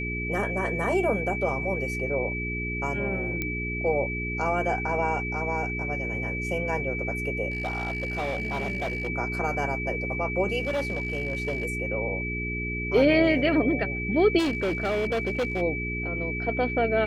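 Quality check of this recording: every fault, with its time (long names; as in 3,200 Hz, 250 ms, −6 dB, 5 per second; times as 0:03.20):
mains hum 60 Hz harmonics 7 −33 dBFS
whistle 2,300 Hz −31 dBFS
0:03.42: click −15 dBFS
0:07.50–0:09.08: clipping −25 dBFS
0:10.62–0:11.66: clipping −23.5 dBFS
0:14.38–0:15.62: clipping −22.5 dBFS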